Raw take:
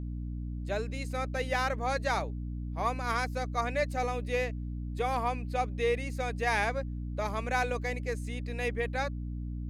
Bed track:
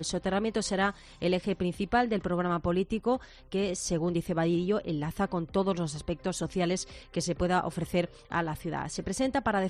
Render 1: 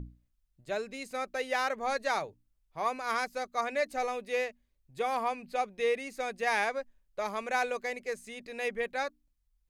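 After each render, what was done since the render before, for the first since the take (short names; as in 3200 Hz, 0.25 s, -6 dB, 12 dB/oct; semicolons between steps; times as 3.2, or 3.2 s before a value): notches 60/120/180/240/300 Hz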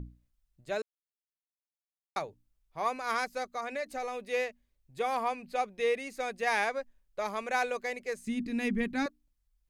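0.82–2.16 mute; 3.51–4.21 compressor 2.5:1, threshold -33 dBFS; 8.27–9.06 resonant low shelf 380 Hz +11.5 dB, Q 3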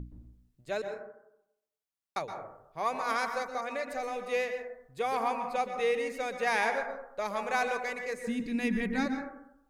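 plate-style reverb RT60 0.8 s, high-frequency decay 0.25×, pre-delay 0.11 s, DRR 5.5 dB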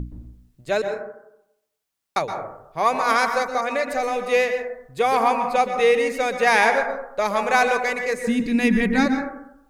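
gain +11.5 dB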